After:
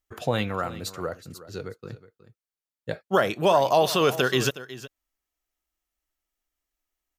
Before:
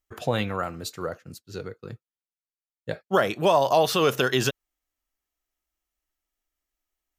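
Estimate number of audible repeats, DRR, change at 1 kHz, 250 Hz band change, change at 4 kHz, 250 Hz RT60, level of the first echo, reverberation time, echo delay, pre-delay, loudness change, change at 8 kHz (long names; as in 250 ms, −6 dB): 1, no reverb audible, 0.0 dB, 0.0 dB, 0.0 dB, no reverb audible, −16.0 dB, no reverb audible, 367 ms, no reverb audible, 0.0 dB, 0.0 dB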